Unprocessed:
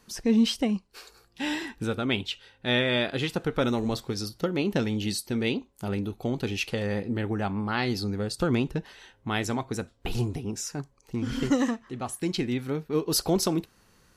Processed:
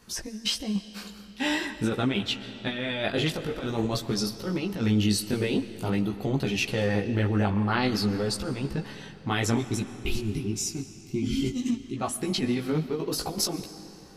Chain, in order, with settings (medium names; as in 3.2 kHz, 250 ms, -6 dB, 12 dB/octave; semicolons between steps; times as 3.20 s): time-frequency box 9.57–11.96 s, 410–2000 Hz -19 dB; compressor with a negative ratio -28 dBFS, ratio -0.5; chorus voices 2, 0.47 Hz, delay 17 ms, depth 2.9 ms; on a send: reverberation RT60 3.6 s, pre-delay 85 ms, DRR 13 dB; on the sum: trim +5 dB